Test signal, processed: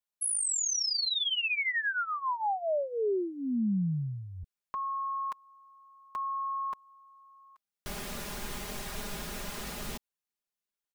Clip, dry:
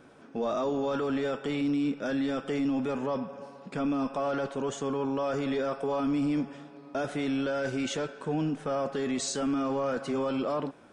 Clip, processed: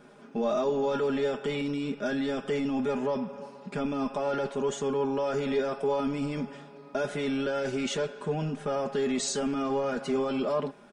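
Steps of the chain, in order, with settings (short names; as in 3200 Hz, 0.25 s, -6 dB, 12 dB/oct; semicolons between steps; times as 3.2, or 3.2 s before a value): comb 4.9 ms, depth 71%; dynamic EQ 1200 Hz, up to -4 dB, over -46 dBFS, Q 4.8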